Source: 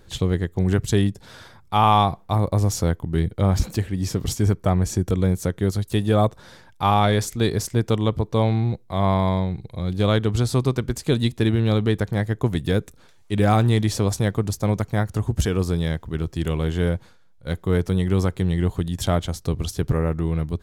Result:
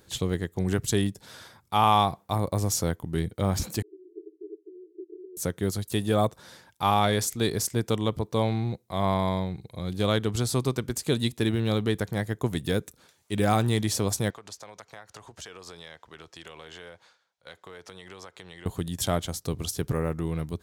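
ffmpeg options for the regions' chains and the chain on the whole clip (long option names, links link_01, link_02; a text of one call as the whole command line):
ffmpeg -i in.wav -filter_complex "[0:a]asettb=1/sr,asplit=3[link_01][link_02][link_03];[link_01]atrim=end=3.824[link_04];[link_02]atrim=start=3.82:end=5.37,asetpts=PTS-STARTPTS,afade=type=in:duration=0.004:curve=qsin,afade=type=out:start_time=1.546:duration=0.004:curve=qsin,acompressor=threshold=-21dB:ratio=6:attack=3.2:release=140:knee=1:detection=peak,asuperpass=centerf=370:order=20:qfactor=3[link_05];[link_03]atrim=start=5.366[link_06];[link_04][link_05]acrossfade=duration=0.004:curve1=hsin:curve2=qsin[link_07];[link_07][link_06]acrossfade=duration=0.004:curve1=qsin:curve2=hsin,asettb=1/sr,asplit=3[link_08][link_09][link_10];[link_08]atrim=end=14.304[link_11];[link_09]atrim=start=14.3:end=18.66,asetpts=PTS-STARTPTS,afade=type=in:duration=0.004:curve=qsin,afade=type=out:start_time=4.356:duration=0.004:curve=qsin,acrossover=split=510 6900:gain=0.112 1 0.112[link_12][link_13][link_14];[link_12][link_13][link_14]amix=inputs=3:normalize=0,acompressor=threshold=-36dB:ratio=6:attack=3.2:release=140:knee=1:detection=peak[link_15];[link_10]atrim=start=18.656[link_16];[link_11][link_15]acrossfade=duration=0.004:curve1=hsin:curve2=qsin[link_17];[link_17][link_16]acrossfade=duration=0.004:curve1=qsin:curve2=hsin,highpass=frequency=130:poles=1,highshelf=frequency=5700:gain=9,volume=-4dB" out.wav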